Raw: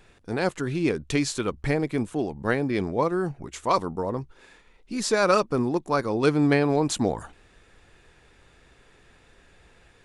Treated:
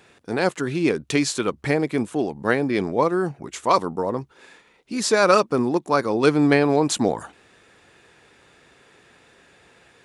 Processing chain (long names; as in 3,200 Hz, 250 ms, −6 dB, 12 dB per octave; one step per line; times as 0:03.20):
Bessel high-pass filter 170 Hz, order 2
level +4.5 dB